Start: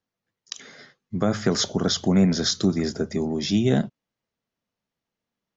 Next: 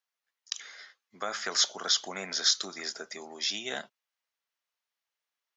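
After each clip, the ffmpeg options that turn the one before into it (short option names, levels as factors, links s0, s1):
-af "highpass=1100"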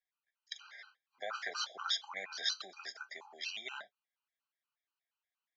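-filter_complex "[0:a]acrossover=split=590 4200:gain=0.1 1 0.0794[s0][s1][s2];[s0][s1][s2]amix=inputs=3:normalize=0,flanger=delay=3.5:depth=5:regen=-52:speed=0.44:shape=triangular,afftfilt=real='re*gt(sin(2*PI*4.2*pts/sr)*(1-2*mod(floor(b*sr/1024/790),2)),0)':imag='im*gt(sin(2*PI*4.2*pts/sr)*(1-2*mod(floor(b*sr/1024/790),2)),0)':win_size=1024:overlap=0.75,volume=1.5"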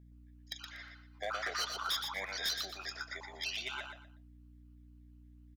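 -filter_complex "[0:a]aeval=exprs='val(0)+0.00112*(sin(2*PI*60*n/s)+sin(2*PI*2*60*n/s)/2+sin(2*PI*3*60*n/s)/3+sin(2*PI*4*60*n/s)/4+sin(2*PI*5*60*n/s)/5)':c=same,asoftclip=type=hard:threshold=0.0211,asplit=2[s0][s1];[s1]aecho=0:1:120|240|360:0.501|0.125|0.0313[s2];[s0][s2]amix=inputs=2:normalize=0,volume=1.41"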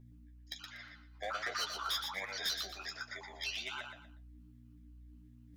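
-af "flanger=delay=8.2:depth=6.7:regen=27:speed=1.3:shape=sinusoidal,areverse,acompressor=mode=upward:threshold=0.00224:ratio=2.5,areverse,volume=1.33"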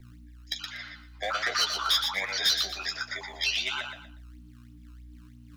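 -filter_complex "[0:a]acrossover=split=290|930|4900[s0][s1][s2][s3];[s0]acrusher=samples=19:mix=1:aa=0.000001:lfo=1:lforange=30.4:lforate=3.1[s4];[s2]crystalizer=i=3:c=0[s5];[s4][s1][s5][s3]amix=inputs=4:normalize=0,volume=2.37"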